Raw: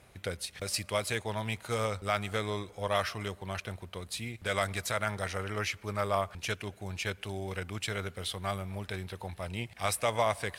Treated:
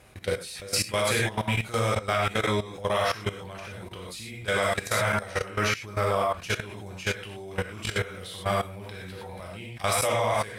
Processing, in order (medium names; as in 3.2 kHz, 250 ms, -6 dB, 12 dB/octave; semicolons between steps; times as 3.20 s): gated-style reverb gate 140 ms flat, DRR -3.5 dB; level held to a coarse grid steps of 15 dB; trim +5.5 dB